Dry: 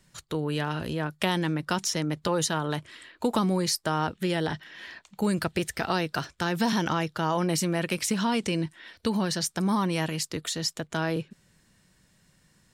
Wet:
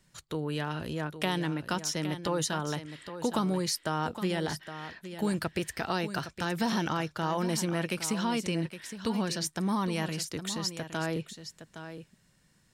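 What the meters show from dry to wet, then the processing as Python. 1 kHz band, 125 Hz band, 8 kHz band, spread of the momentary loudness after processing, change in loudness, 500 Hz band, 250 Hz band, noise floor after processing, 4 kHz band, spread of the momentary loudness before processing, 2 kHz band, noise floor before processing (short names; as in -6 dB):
-3.5 dB, -3.5 dB, -3.5 dB, 10 LU, -4.0 dB, -3.5 dB, -3.5 dB, -67 dBFS, -3.5 dB, 7 LU, -3.5 dB, -65 dBFS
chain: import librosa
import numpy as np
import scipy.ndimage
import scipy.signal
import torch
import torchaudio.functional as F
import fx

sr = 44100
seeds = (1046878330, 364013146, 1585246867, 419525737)

y = x + 10.0 ** (-11.0 / 20.0) * np.pad(x, (int(814 * sr / 1000.0), 0))[:len(x)]
y = y * librosa.db_to_amplitude(-4.0)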